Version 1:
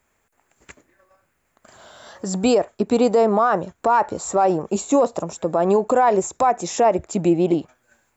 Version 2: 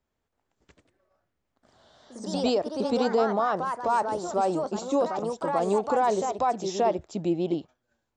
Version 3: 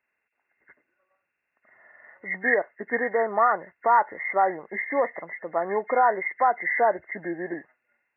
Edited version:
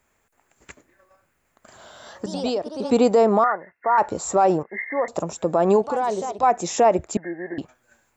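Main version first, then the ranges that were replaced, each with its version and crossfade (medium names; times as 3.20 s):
1
2.26–2.91 s: from 2
3.44–3.98 s: from 3
4.63–5.08 s: from 3
5.82–6.43 s: from 2
7.17–7.58 s: from 3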